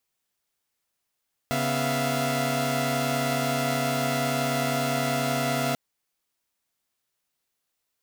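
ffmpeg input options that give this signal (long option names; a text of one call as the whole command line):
ffmpeg -f lavfi -i "aevalsrc='0.0447*((2*mod(138.59*t,1)-1)+(2*mod(246.94*t,1)-1)+(2*mod(659.26*t,1)-1)+(2*mod(698.46*t,1)-1))':duration=4.24:sample_rate=44100" out.wav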